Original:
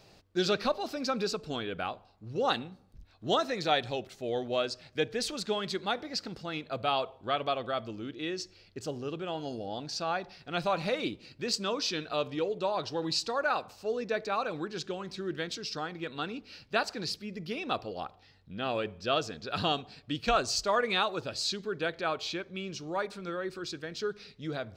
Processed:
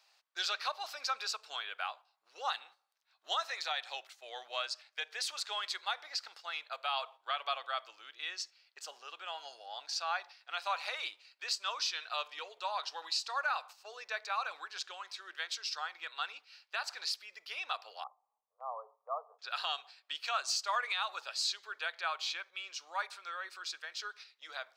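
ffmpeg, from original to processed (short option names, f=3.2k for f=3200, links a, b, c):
-filter_complex "[0:a]asettb=1/sr,asplit=3[a][b][c];[a]atrim=end=18.044[d];[b]atrim=start=18.04:end=19.39,asetpts=PTS-STARTPTS,afade=t=in:d=0.004:c=qsin,afade=t=out:st=1.346:d=0.004:c=qsin,asuperpass=centerf=710:order=20:qfactor=0.92[e];[c]atrim=start=19.386[f];[d][e]acrossfade=d=0.004:c1=hsin:c2=qsin[g];[g][f]acrossfade=d=0.004:c1=qsin:c2=hsin,agate=range=-7dB:threshold=-45dB:ratio=16:detection=peak,highpass=f=870:w=0.5412,highpass=f=870:w=1.3066,alimiter=limit=-23dB:level=0:latency=1:release=151"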